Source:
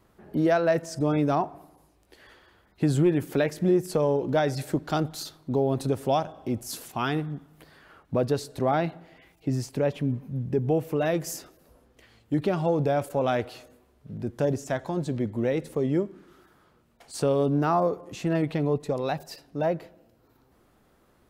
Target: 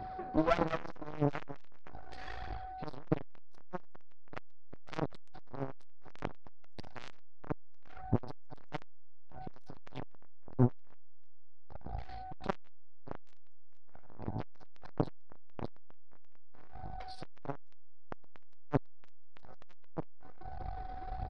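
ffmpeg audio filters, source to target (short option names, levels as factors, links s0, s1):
-filter_complex "[0:a]aeval=exprs='if(lt(val(0),0),0.708*val(0),val(0))':c=same,equalizer=f=2900:t=o:w=0.24:g=-12.5,asplit=2[s0][s1];[s1]adelay=228,lowpass=f=850:p=1,volume=0.562,asplit=2[s2][s3];[s3]adelay=228,lowpass=f=850:p=1,volume=0.27,asplit=2[s4][s5];[s5]adelay=228,lowpass=f=850:p=1,volume=0.27,asplit=2[s6][s7];[s7]adelay=228,lowpass=f=850:p=1,volume=0.27[s8];[s0][s2][s4][s6][s8]amix=inputs=5:normalize=0,areverse,acompressor=threshold=0.0158:ratio=12,areverse,aphaser=in_gain=1:out_gain=1:delay=4.2:decay=0.59:speed=1.6:type=triangular,aeval=exprs='val(0)+0.00251*sin(2*PI*750*n/s)':c=same,asubboost=boost=7:cutoff=84,aresample=11025,aeval=exprs='clip(val(0),-1,0.00944)':c=same,aresample=44100,aeval=exprs='0.0398*(cos(1*acos(clip(val(0)/0.0398,-1,1)))-cos(1*PI/2))+0.0126*(cos(4*acos(clip(val(0)/0.0398,-1,1)))-cos(4*PI/2))':c=same,volume=3.55"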